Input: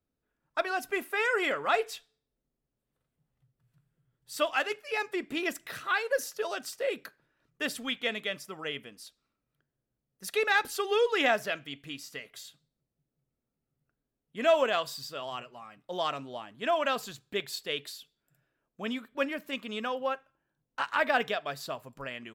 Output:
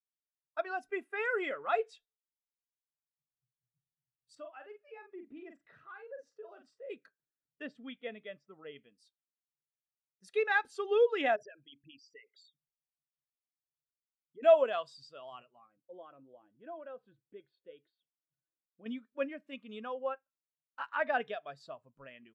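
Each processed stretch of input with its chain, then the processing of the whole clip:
0:04.35–0:06.90: low-pass filter 1,500 Hz 6 dB per octave + double-tracking delay 43 ms −6 dB + downward compressor 2 to 1, threshold −41 dBFS
0:07.62–0:08.76: low-pass filter 6,000 Hz + high-shelf EQ 2,600 Hz −9 dB
0:11.36–0:14.43: spectral envelope exaggerated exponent 3 + downward compressor, threshold −36 dBFS
0:15.66–0:18.86: hollow resonant body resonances 330/510/1,500/3,300 Hz, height 11 dB, ringing for 85 ms + downward compressor 1.5 to 1, threshold −50 dBFS + high-frequency loss of the air 410 metres
whole clip: low-pass filter 10,000 Hz 24 dB per octave; every bin expanded away from the loudest bin 1.5 to 1

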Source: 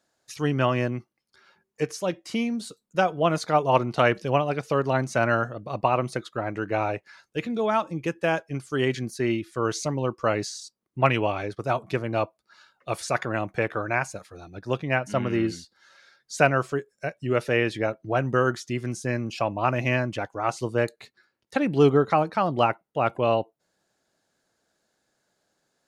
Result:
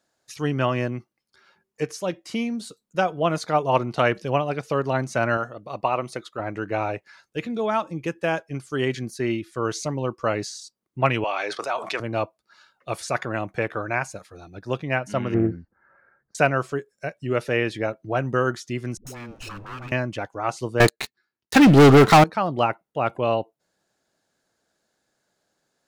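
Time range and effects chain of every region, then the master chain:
0:05.37–0:06.40: low-shelf EQ 240 Hz −8.5 dB + notch filter 1,600 Hz
0:11.24–0:12.00: band-pass filter 720–7,700 Hz + envelope flattener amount 70%
0:15.34–0:16.35: inverse Chebyshev low-pass filter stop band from 3,200 Hz + low-shelf EQ 190 Hz +11 dB + highs frequency-modulated by the lows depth 0.26 ms
0:18.97–0:19.92: lower of the sound and its delayed copy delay 0.75 ms + downward compressor 5 to 1, threshold −33 dBFS + all-pass dispersion highs, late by 96 ms, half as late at 360 Hz
0:20.80–0:22.24: parametric band 550 Hz −10 dB 0.28 octaves + leveller curve on the samples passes 5
whole clip: no processing

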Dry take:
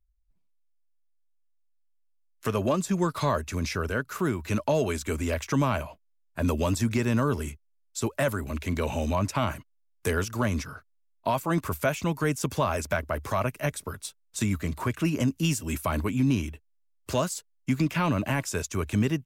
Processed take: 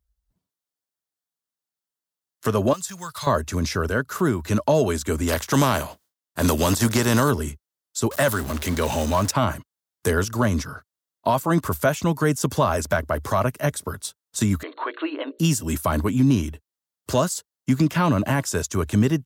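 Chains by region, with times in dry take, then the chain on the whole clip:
0:02.73–0:03.27: one scale factor per block 7 bits + upward compression, threshold −29 dBFS + guitar amp tone stack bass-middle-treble 10-0-10
0:05.27–0:07.30: compressing power law on the bin magnitudes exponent 0.66 + noise gate with hold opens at −58 dBFS, closes at −62 dBFS
0:08.11–0:09.31: converter with a step at zero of −34.5 dBFS + tilt shelving filter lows −3.5 dB, about 860 Hz
0:14.63–0:15.39: linear-phase brick-wall band-pass 280–4,400 Hz + parametric band 370 Hz −5.5 dB 0.66 octaves + mains-hum notches 60/120/180/240/300/360/420/480/540/600 Hz
whole clip: high-pass filter 60 Hz; parametric band 2,400 Hz −8.5 dB 0.44 octaves; level +6 dB

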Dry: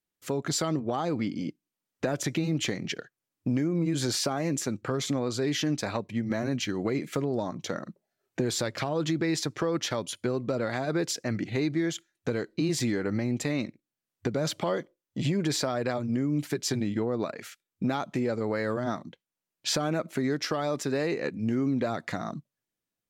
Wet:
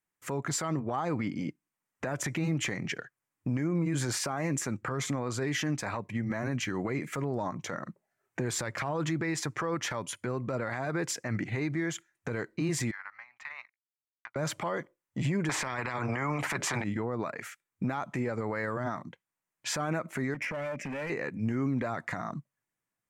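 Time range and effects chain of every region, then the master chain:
0:12.91–0:14.36: inverse Chebyshev high-pass filter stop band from 480 Hz + power curve on the samples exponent 1.4 + high-frequency loss of the air 260 metres
0:15.49–0:16.84: low-pass filter 1,600 Hz 6 dB per octave + parametric band 290 Hz +10 dB 2.7 octaves + every bin compressed towards the loudest bin 4 to 1
0:20.34–0:21.10: drawn EQ curve 130 Hz 0 dB, 200 Hz +9 dB, 400 Hz −7 dB, 580 Hz +6 dB, 1,000 Hz −22 dB, 2,400 Hz +12 dB, 3,900 Hz −13 dB, 5,600 Hz −6 dB, 9,300 Hz −16 dB + downward compressor 3 to 1, threshold −31 dBFS + hard clipping −32 dBFS
whole clip: octave-band graphic EQ 125/1,000/2,000/4,000/8,000 Hz +6/+8/+8/−7/+5 dB; brickwall limiter −18.5 dBFS; level −3.5 dB

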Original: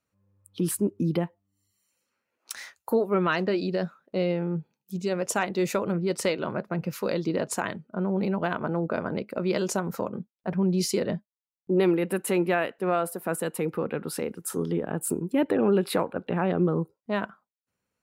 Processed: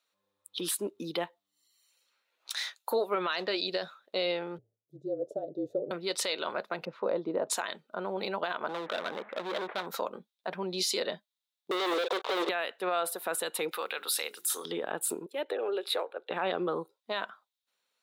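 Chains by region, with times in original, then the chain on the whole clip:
0:04.58–0:05.91: elliptic low-pass filter 650 Hz + mains-hum notches 50/100/150 Hz + frequency shifter −39 Hz
0:06.85–0:07.50: Chebyshev low-pass filter 850 Hz + low-shelf EQ 220 Hz +8 dB
0:08.69–0:09.86: linear delta modulator 64 kbit/s, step −40 dBFS + Butterworth low-pass 2,000 Hz + hard clipping −27.5 dBFS
0:11.71–0:12.49: Chebyshev band-pass filter 410–1,200 Hz, order 3 + leveller curve on the samples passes 5
0:13.71–0:14.65: high-pass filter 270 Hz 6 dB per octave + spectral tilt +4 dB per octave + mains-hum notches 60/120/180/240/300/360/420 Hz
0:15.26–0:16.31: four-pole ladder high-pass 350 Hz, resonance 45% + parametric band 1,000 Hz −4.5 dB 0.29 octaves
whole clip: high-pass filter 590 Hz 12 dB per octave; parametric band 3,700 Hz +14.5 dB 0.47 octaves; brickwall limiter −22 dBFS; level +2 dB

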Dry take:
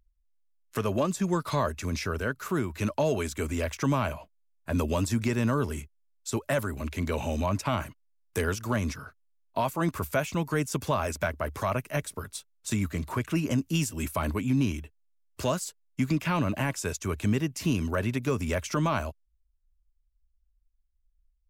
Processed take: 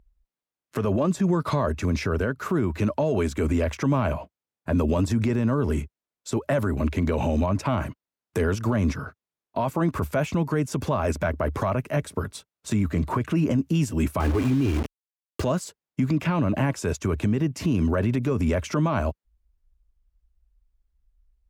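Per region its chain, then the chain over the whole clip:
0:14.20–0:15.42: low-pass filter 12,000 Hz + comb filter 2.5 ms, depth 72% + bit-depth reduction 6 bits, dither none
whole clip: high-pass filter 270 Hz 6 dB per octave; spectral tilt −3.5 dB per octave; brickwall limiter −23 dBFS; level +8 dB

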